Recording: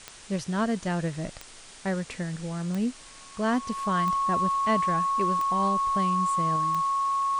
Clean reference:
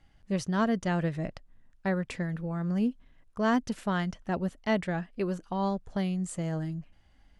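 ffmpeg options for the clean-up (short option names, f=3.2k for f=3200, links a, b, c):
-af "adeclick=t=4,bandreject=f=1.1k:w=30,afwtdn=0.0056,asetnsamples=n=441:p=0,asendcmd='6.56 volume volume 3.5dB',volume=0dB"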